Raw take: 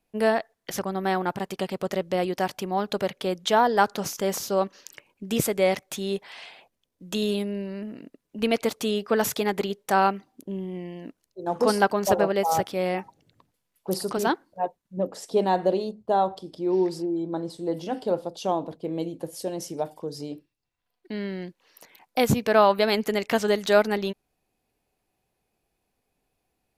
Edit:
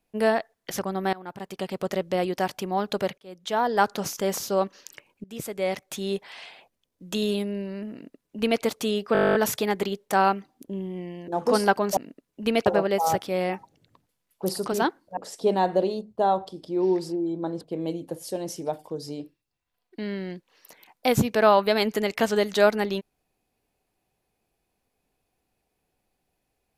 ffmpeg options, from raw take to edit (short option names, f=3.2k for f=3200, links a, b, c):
-filter_complex "[0:a]asplit=20[a][b][c][d][e][f][g][h][i][j][k][l][m][n][o][p][q][r][s][t];[a]atrim=end=1.13,asetpts=PTS-STARTPTS,afade=t=out:st=1.126:d=0.004:c=hsin:silence=0.0841395[u];[b]atrim=start=1.13:end=3.18,asetpts=PTS-STARTPTS,afade=t=in:d=0.68:silence=0.0841395,afade=t=out:st=2.046:d=0.004:c=hsin[v];[c]atrim=start=3.18:end=5.24,asetpts=PTS-STARTPTS,afade=t=in:d=0.69,afade=t=out:st=2.056:d=0.004:c=hsin:silence=0.112202[w];[d]atrim=start=5.24:end=9.152,asetpts=PTS-STARTPTS,afade=t=in:d=0.83:silence=0.112202[x];[e]atrim=start=9.128:end=9.152[y];[f]atrim=start=9.128:end=9.152[z];[g]atrim=start=9.128:end=9.152[aa];[h]atrim=start=9.128:end=9.152[ab];[i]atrim=start=9.128:end=9.152[ac];[j]atrim=start=9.128:end=9.152[ad];[k]atrim=start=9.128:end=9.152[ae];[l]atrim=start=9.128:end=9.152[af];[m]atrim=start=9.128:end=9.152[ag];[n]atrim=start=9.128:end=9.152[ah];[o]atrim=start=9.128:end=11.062[ai];[p]atrim=start=11.418:end=12.112[aj];[q]atrim=start=7.928:end=8.622[ak];[r]atrim=start=12.108:end=14.622[al];[s]atrim=start=15.068:end=17.512[am];[t]atrim=start=18.728[an];[u][v][w][x]concat=n=4:v=0:a=1[ao];[ao][y]acrossfade=d=0.004:c1=hsin:c2=hsin[ap];[ap][z]acrossfade=d=0.004:c1=hsin:c2=hsin[aq];[aq][aa]acrossfade=d=0.004:c1=hsin:c2=hsin[ar];[ar][ab]acrossfade=d=0.004:c1=hsin:c2=hsin[as];[as][ac]acrossfade=d=0.004:c1=hsin:c2=hsin[at];[at][ad]acrossfade=d=0.004:c1=hsin:c2=hsin[au];[au][ae]acrossfade=d=0.004:c1=hsin:c2=hsin[av];[av][af]acrossfade=d=0.004:c1=hsin:c2=hsin[aw];[aw][ag]acrossfade=d=0.004:c1=hsin:c2=hsin[ax];[ax][ah]acrossfade=d=0.004:c1=hsin:c2=hsin[ay];[ay][ai]acrossfade=d=0.004:c1=hsin:c2=hsin[az];[az][aj]acrossfade=d=0.004:c1=hsin:c2=hsin[ba];[ba][ak]acrossfade=d=0.004:c1=hsin:c2=hsin[bb];[bb][al]acrossfade=d=0.004:c1=hsin:c2=hsin[bc];[bc][am]acrossfade=d=0.004:c1=hsin:c2=hsin[bd];[bd][an]acrossfade=d=0.004:c1=hsin:c2=hsin"